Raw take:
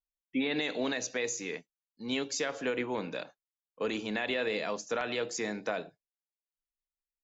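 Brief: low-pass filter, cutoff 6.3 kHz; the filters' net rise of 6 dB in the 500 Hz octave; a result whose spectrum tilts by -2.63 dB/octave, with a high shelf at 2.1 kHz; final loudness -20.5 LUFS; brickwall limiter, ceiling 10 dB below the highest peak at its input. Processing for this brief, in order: low-pass 6.3 kHz; peaking EQ 500 Hz +6.5 dB; treble shelf 2.1 kHz +5.5 dB; trim +15.5 dB; peak limiter -11 dBFS

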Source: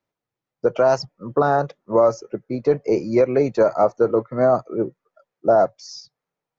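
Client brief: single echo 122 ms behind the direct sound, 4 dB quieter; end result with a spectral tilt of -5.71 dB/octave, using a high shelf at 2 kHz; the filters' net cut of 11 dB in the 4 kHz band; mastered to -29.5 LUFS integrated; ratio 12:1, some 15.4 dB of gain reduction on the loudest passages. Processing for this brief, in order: treble shelf 2 kHz -7 dB; peaking EQ 4 kHz -7.5 dB; compression 12:1, threshold -28 dBFS; delay 122 ms -4 dB; trim +3 dB

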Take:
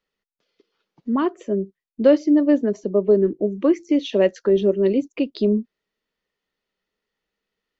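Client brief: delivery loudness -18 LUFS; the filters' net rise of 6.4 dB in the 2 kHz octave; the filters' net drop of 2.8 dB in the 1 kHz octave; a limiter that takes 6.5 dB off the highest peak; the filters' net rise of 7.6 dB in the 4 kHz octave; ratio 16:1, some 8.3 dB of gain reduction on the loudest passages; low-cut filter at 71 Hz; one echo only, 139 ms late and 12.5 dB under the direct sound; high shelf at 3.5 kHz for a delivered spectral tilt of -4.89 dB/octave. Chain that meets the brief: high-pass 71 Hz; peaking EQ 1 kHz -6 dB; peaking EQ 2 kHz +7 dB; treble shelf 3.5 kHz +5.5 dB; peaking EQ 4 kHz +4 dB; compression 16:1, threshold -19 dBFS; peak limiter -17.5 dBFS; delay 139 ms -12.5 dB; trim +9.5 dB

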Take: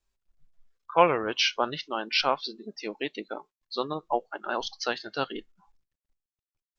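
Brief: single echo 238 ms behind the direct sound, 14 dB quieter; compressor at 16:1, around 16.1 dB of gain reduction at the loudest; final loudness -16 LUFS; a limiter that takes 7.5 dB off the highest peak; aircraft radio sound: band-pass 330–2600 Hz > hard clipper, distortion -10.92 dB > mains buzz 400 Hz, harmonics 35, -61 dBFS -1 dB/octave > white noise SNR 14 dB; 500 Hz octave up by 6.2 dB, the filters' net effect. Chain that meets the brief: peaking EQ 500 Hz +8 dB; compression 16:1, threshold -24 dBFS; peak limiter -20 dBFS; band-pass 330–2600 Hz; delay 238 ms -14 dB; hard clipper -29 dBFS; mains buzz 400 Hz, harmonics 35, -61 dBFS -1 dB/octave; white noise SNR 14 dB; trim +21.5 dB

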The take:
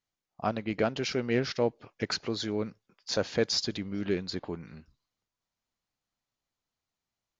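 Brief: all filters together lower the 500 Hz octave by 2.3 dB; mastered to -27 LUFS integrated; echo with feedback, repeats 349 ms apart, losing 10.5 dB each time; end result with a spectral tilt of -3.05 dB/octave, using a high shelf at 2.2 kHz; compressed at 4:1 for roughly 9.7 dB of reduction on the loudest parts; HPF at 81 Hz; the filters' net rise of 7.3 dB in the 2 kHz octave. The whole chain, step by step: high-pass 81 Hz; peaking EQ 500 Hz -3.5 dB; peaking EQ 2 kHz +5 dB; treble shelf 2.2 kHz +8 dB; compression 4:1, threshold -30 dBFS; feedback delay 349 ms, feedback 30%, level -10.5 dB; trim +7 dB

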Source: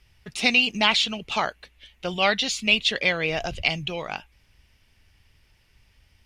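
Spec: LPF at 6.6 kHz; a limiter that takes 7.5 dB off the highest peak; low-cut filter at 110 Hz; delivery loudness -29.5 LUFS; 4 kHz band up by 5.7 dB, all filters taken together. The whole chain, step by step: high-pass 110 Hz; low-pass 6.6 kHz; peaking EQ 4 kHz +8 dB; trim -8.5 dB; peak limiter -17 dBFS

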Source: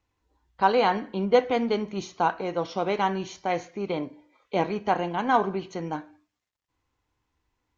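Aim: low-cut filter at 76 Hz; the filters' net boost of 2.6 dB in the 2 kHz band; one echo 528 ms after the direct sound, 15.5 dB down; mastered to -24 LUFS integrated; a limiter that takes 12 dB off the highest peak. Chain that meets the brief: high-pass 76 Hz; peaking EQ 2 kHz +3.5 dB; peak limiter -17.5 dBFS; delay 528 ms -15.5 dB; trim +6 dB

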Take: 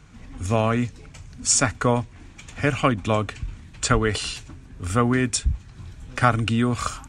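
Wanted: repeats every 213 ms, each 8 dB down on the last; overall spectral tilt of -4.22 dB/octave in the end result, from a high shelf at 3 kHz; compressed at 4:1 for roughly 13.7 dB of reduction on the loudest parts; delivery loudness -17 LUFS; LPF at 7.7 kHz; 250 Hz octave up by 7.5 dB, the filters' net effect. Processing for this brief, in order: low-pass 7.7 kHz; peaking EQ 250 Hz +8 dB; treble shelf 3 kHz +4.5 dB; compression 4:1, threshold -28 dBFS; feedback delay 213 ms, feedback 40%, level -8 dB; trim +14 dB

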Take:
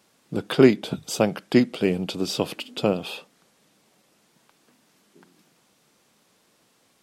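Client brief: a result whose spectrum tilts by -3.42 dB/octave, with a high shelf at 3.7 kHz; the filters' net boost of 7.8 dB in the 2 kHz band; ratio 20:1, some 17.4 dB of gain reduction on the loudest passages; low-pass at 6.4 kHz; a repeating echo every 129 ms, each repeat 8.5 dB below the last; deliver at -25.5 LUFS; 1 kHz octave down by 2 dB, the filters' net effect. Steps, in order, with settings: low-pass 6.4 kHz; peaking EQ 1 kHz -6.5 dB; peaking EQ 2 kHz +9 dB; treble shelf 3.7 kHz +7.5 dB; compression 20:1, threshold -25 dBFS; feedback delay 129 ms, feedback 38%, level -8.5 dB; trim +5 dB

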